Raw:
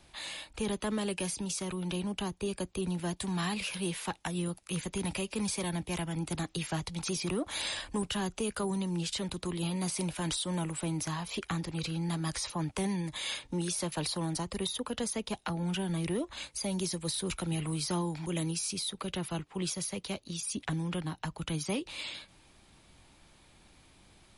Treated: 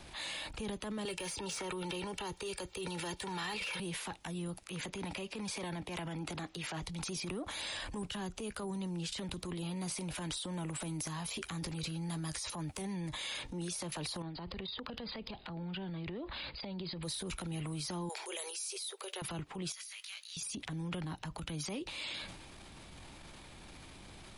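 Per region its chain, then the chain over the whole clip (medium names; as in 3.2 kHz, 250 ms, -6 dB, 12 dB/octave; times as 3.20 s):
1.05–3.80 s: comb 2.2 ms, depth 55% + overdrive pedal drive 11 dB, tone 6.4 kHz, clips at -21.5 dBFS + three bands compressed up and down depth 100%
4.64–6.83 s: low-pass 4 kHz 6 dB/octave + bass shelf 160 Hz -11.5 dB
10.80–12.82 s: treble shelf 7.4 kHz +11.5 dB + doubling 13 ms -13 dB
14.22–17.03 s: brick-wall FIR low-pass 5 kHz + compression 12:1, threshold -43 dBFS
18.09–19.22 s: brick-wall FIR high-pass 360 Hz + treble shelf 5.6 kHz +10 dB
19.72–20.37 s: high-pass 1.5 kHz 24 dB/octave + compression 4:1, threshold -49 dBFS + doubling 18 ms -4.5 dB
whole clip: compression, threshold -45 dBFS; treble shelf 6.6 kHz -4.5 dB; transient shaper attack -6 dB, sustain +8 dB; trim +7.5 dB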